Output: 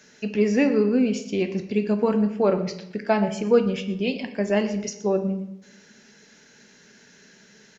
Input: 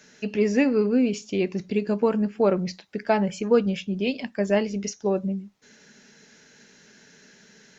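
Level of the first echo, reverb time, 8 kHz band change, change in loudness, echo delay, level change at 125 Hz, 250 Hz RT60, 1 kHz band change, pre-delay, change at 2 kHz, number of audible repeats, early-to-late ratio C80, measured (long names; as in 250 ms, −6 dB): −16.5 dB, 0.80 s, can't be measured, +1.0 dB, 119 ms, +1.0 dB, 0.90 s, +0.5 dB, 9 ms, +0.5 dB, 1, 12.5 dB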